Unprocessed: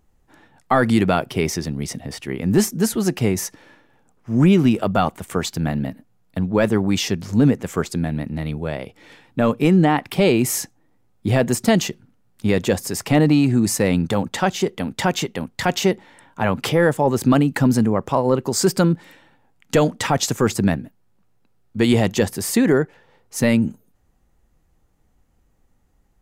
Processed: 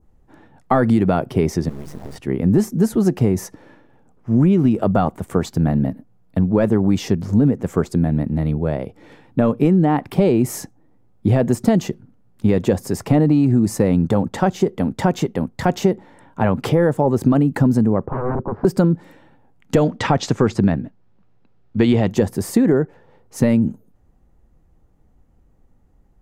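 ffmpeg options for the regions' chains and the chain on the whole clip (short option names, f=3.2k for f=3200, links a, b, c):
-filter_complex "[0:a]asettb=1/sr,asplit=3[a][b][c];[a]atrim=end=1.694[d];[b]atrim=start=1.69:end=2.16,asetpts=PTS-STARTPTS,afade=t=in:d=0.004:c=qsin,afade=t=out:st=0.466:d=0.004:c=qsin,bandreject=f=49.21:t=h:w=4,bandreject=f=98.42:t=h:w=4,bandreject=f=147.63:t=h:w=4,bandreject=f=196.84:t=h:w=4,bandreject=f=246.05:t=h:w=4,bandreject=f=295.26:t=h:w=4,bandreject=f=344.47:t=h:w=4,acompressor=threshold=-30dB:ratio=5:attack=3.2:release=140:knee=1:detection=peak,acrusher=bits=4:dc=4:mix=0:aa=0.000001[e];[c]atrim=start=2.156[f];[d][e]acrossfade=d=0.004:c1=hsin:c2=qsin[g];[g][f]acrossfade=d=0.004:c1=qsin:c2=hsin,asettb=1/sr,asplit=3[h][i][j];[h]atrim=end=18.064[k];[i]atrim=start=18.06:end=18.65,asetpts=PTS-STARTPTS,afade=t=in:d=0.004:c=qsin,afade=t=out:st=0.586:d=0.004:c=qsin,aeval=exprs='0.1*(abs(mod(val(0)/0.1+3,4)-2)-1)':c=same,lowpass=f=1.4k:w=0.5412,lowpass=f=1.4k:w=1.3066[l];[j]atrim=start=18.646[m];[k][l]acrossfade=d=0.004:c1=hsin:c2=qsin[n];[n][m]acrossfade=d=0.004:c1=qsin:c2=hsin,asettb=1/sr,asplit=3[o][p][q];[o]atrim=end=19.834[r];[p]atrim=start=19.83:end=22.11,asetpts=PTS-STARTPTS,afade=t=in:d=0.004:c=qsin,afade=t=out:st=2.276:d=0.004:c=qsin,lowpass=3.7k,highshelf=f=2.1k:g=10.5[s];[q]atrim=start=22.106[t];[r][s]acrossfade=d=0.004:c1=hsin:c2=qsin[u];[u][t]acrossfade=d=0.004:c1=qsin:c2=hsin,tiltshelf=f=1.3k:g=6.5,acompressor=threshold=-11dB:ratio=6,adynamicequalizer=threshold=0.00282:dfrequency=2800:dqfactor=1.1:tfrequency=2800:tqfactor=1.1:attack=5:release=100:ratio=0.375:range=2:mode=cutabove:tftype=bell"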